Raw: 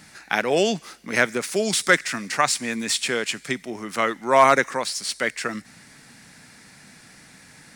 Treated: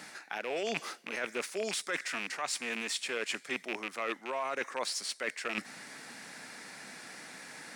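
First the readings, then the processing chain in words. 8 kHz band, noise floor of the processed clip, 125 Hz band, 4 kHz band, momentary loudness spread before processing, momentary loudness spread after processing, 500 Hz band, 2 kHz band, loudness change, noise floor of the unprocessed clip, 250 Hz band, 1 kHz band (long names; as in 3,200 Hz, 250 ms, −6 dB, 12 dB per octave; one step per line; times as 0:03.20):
−11.5 dB, −55 dBFS, −19.5 dB, −10.0 dB, 13 LU, 12 LU, −14.0 dB, −12.0 dB, −14.0 dB, −50 dBFS, −15.0 dB, −16.5 dB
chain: loose part that buzzes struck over −35 dBFS, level −15 dBFS
high-pass filter 410 Hz 12 dB per octave
spectral tilt −1.5 dB per octave
brickwall limiter −13 dBFS, peak gain reduction 9.5 dB
reversed playback
downward compressor 6 to 1, threshold −37 dBFS, peak gain reduction 17.5 dB
reversed playback
level +4 dB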